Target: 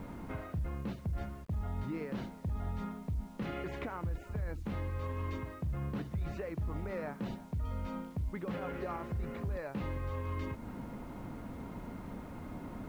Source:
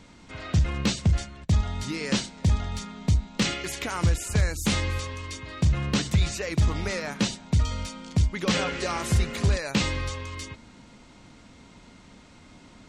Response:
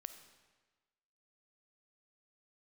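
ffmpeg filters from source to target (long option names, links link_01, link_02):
-af "areverse,acompressor=threshold=-34dB:ratio=10,areverse,lowpass=1200,alimiter=level_in=13dB:limit=-24dB:level=0:latency=1:release=165,volume=-13dB,acrusher=bits=11:mix=0:aa=0.000001,volume=7.5dB"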